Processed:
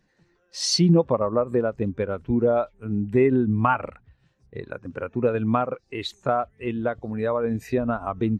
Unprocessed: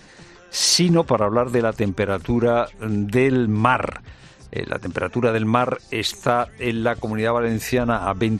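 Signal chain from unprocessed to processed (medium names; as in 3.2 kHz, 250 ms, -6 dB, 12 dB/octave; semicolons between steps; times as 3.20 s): spectral contrast expander 1.5:1; trim -5 dB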